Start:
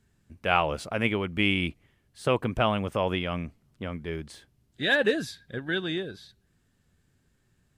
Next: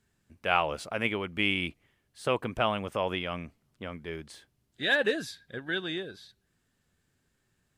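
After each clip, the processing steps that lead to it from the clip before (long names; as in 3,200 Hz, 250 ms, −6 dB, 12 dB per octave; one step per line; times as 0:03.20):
low-shelf EQ 270 Hz −7.5 dB
level −1.5 dB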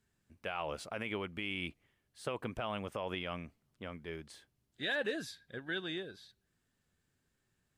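brickwall limiter −20.5 dBFS, peak gain reduction 11 dB
level −5.5 dB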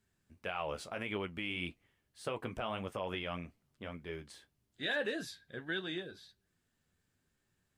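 flanger 1.7 Hz, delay 9.8 ms, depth 4.1 ms, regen −48%
level +4 dB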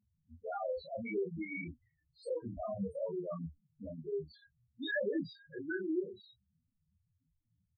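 hard clipping −33.5 dBFS, distortion −12 dB
spectral peaks only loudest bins 2
double-tracking delay 25 ms −3 dB
level +7 dB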